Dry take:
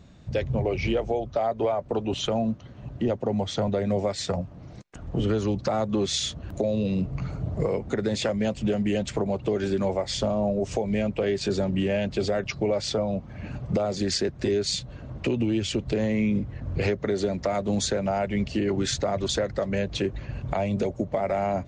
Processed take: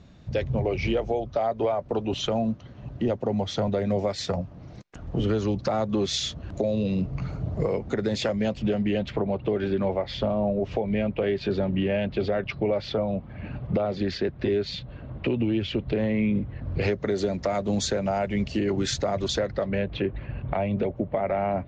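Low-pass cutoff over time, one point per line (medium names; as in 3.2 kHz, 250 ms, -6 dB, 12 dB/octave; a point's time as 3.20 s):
low-pass 24 dB/octave
8.30 s 6.5 kHz
9.21 s 3.7 kHz
16.47 s 3.7 kHz
17.08 s 7.3 kHz
19.22 s 7.3 kHz
19.89 s 3.2 kHz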